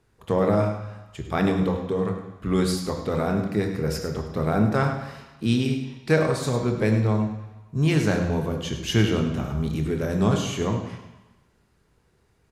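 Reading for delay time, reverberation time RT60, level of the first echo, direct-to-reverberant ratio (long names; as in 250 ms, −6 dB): 102 ms, 1.1 s, −11.5 dB, 3.0 dB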